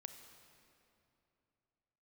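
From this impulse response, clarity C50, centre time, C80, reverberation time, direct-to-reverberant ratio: 7.5 dB, 37 ms, 8.5 dB, 2.8 s, 7.0 dB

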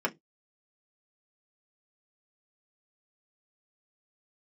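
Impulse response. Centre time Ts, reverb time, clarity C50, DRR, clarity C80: 6 ms, not exponential, 26.5 dB, 0.0 dB, 36.0 dB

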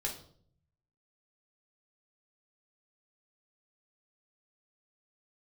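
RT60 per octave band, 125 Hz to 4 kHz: 1.2, 0.80, 0.65, 0.50, 0.40, 0.45 s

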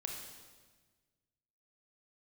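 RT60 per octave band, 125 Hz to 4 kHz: 2.0, 1.7, 1.5, 1.3, 1.3, 1.3 s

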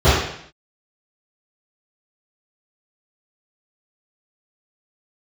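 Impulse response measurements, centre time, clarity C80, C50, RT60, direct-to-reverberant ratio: 66 ms, 4.0 dB, 0.0 dB, 0.65 s, -19.0 dB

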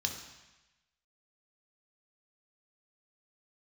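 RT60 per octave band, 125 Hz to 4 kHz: 1.1, 0.95, 0.95, 1.1, 1.2, 1.1 s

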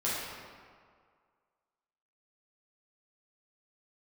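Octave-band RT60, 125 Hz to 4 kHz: 1.7, 1.8, 1.9, 2.0, 1.6, 1.2 s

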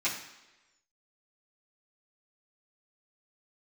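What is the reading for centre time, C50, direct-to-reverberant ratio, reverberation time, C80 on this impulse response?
31 ms, 7.0 dB, -11.5 dB, 1.1 s, 9.5 dB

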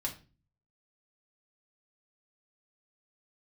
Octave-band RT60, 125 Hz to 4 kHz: 0.75, 0.55, 0.35, 0.30, 0.30, 0.30 s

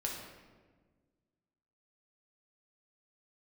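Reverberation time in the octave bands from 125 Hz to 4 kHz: 2.1, 2.0, 1.6, 1.3, 1.1, 0.85 s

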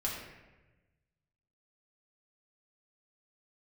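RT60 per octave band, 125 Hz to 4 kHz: 1.8, 1.4, 1.3, 1.0, 1.1, 0.75 s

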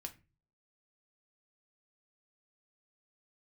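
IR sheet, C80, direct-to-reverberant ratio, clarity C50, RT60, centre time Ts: 22.0 dB, 4.5 dB, 16.0 dB, 0.30 s, 6 ms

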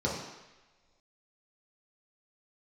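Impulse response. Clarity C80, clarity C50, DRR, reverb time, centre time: 5.5 dB, 2.5 dB, -5.5 dB, not exponential, 53 ms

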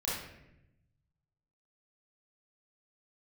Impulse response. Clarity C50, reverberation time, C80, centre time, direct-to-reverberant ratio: -0.5 dB, 0.85 s, 4.5 dB, 67 ms, -8.5 dB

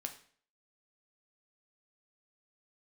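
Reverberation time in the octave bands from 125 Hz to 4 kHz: 0.50, 0.55, 0.50, 0.50, 0.50, 0.45 s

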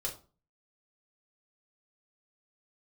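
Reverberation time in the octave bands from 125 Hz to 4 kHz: 0.55, 0.45, 0.35, 0.35, 0.25, 0.25 s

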